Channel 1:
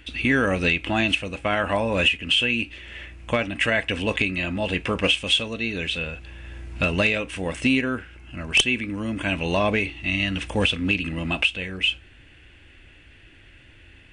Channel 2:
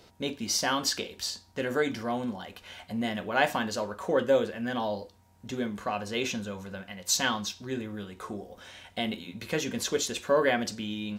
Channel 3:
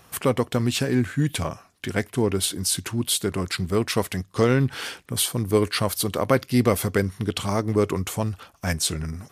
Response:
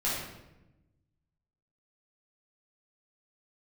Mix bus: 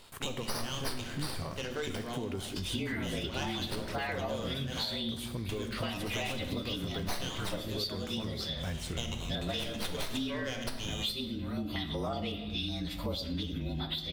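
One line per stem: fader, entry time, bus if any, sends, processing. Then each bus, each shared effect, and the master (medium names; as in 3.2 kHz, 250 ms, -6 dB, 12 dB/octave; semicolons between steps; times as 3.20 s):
-3.0 dB, 2.50 s, send -16 dB, frequency axis rescaled in octaves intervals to 112%; step-sequenced notch 5.4 Hz 370–6200 Hz
-9.5 dB, 0.00 s, send -12 dB, high-order bell 4.3 kHz +14.5 dB; sliding maximum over 5 samples
-6.5 dB, 0.00 s, send -19 dB, de-esser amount 80%; peak limiter -18 dBFS, peak gain reduction 11 dB; small samples zeroed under -45 dBFS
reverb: on, RT60 0.95 s, pre-delay 8 ms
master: compression 6:1, threshold -32 dBFS, peak gain reduction 16 dB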